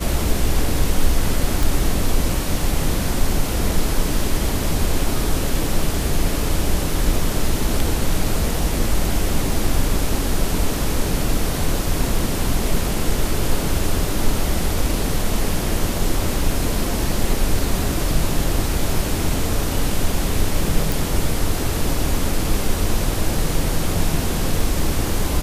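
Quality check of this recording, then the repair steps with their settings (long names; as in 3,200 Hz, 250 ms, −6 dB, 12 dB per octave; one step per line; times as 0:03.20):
0:01.63: click
0:20.92: click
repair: click removal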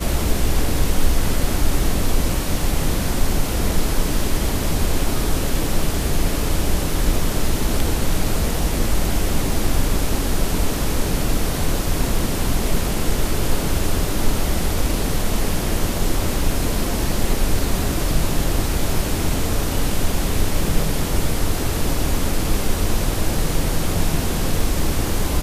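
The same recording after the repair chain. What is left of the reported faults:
none of them is left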